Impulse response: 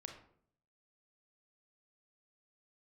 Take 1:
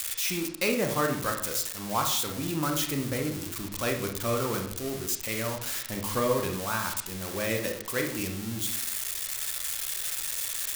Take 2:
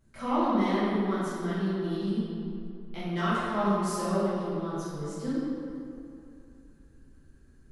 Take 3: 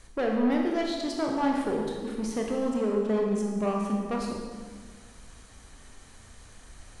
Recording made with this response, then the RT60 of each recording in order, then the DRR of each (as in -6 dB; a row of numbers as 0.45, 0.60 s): 1; 0.60, 2.7, 1.7 s; 3.0, -13.0, -0.5 dB